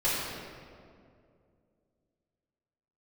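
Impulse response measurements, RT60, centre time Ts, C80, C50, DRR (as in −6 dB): 2.3 s, 122 ms, 0.5 dB, −2.0 dB, −9.5 dB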